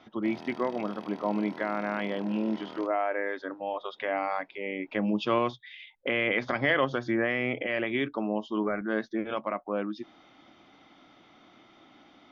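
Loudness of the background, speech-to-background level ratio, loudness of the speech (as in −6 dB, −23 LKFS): −45.0 LKFS, 14.5 dB, −30.5 LKFS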